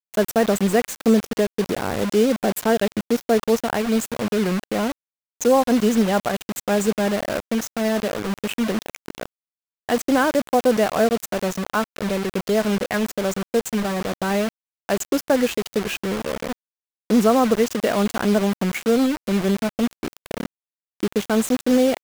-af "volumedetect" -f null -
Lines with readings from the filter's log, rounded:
mean_volume: -21.5 dB
max_volume: -5.3 dB